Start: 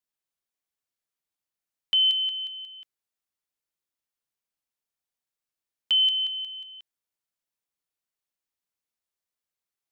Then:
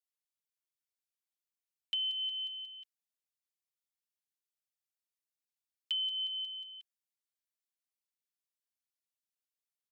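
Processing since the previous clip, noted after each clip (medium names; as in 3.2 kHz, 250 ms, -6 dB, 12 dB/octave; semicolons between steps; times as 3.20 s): Bessel high-pass 2.4 kHz, order 2; comb 5.6 ms, depth 63%; compression, threshold -26 dBFS, peak gain reduction 9 dB; trim -7 dB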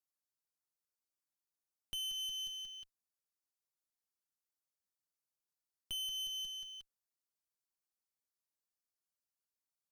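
high-order bell 2.6 kHz -8.5 dB 1.2 oct; waveshaping leveller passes 2; one-sided clip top -55 dBFS, bottom -36 dBFS; trim +2.5 dB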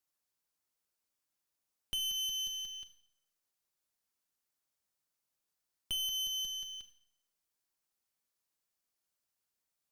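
Schroeder reverb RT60 0.7 s, combs from 29 ms, DRR 9.5 dB; trim +5.5 dB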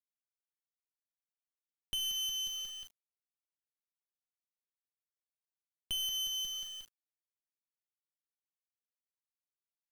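bit crusher 9-bit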